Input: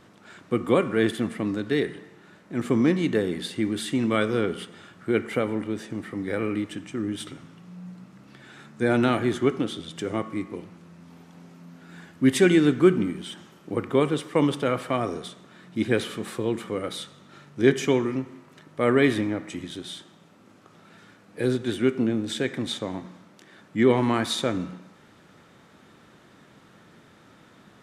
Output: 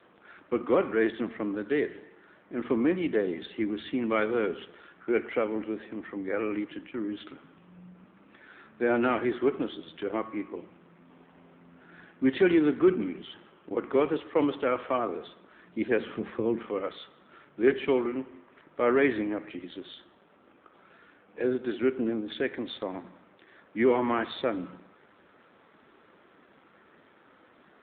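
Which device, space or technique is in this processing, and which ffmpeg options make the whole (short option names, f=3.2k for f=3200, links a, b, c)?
telephone: -filter_complex "[0:a]asettb=1/sr,asplit=3[a][b][c];[a]atrim=end=15.994[d];[b]atrim=start=15.99:end=16.65,asetpts=PTS-STARTPTS,afade=t=in:d=0.004:c=qsin,afade=t=out:st=0.656:d=0.004:c=qsin,bass=f=250:g=10,treble=f=4k:g=-12[e];[c]atrim=start=16.646[f];[d][e]acrossfade=d=0.004:c1=hsin:c2=qsin[g];[g][f]acrossfade=d=0.004:c1=qsin:c2=hsin,highpass=310,lowpass=3.3k,asoftclip=type=tanh:threshold=-12dB" -ar 8000 -c:a libopencore_amrnb -b:a 7400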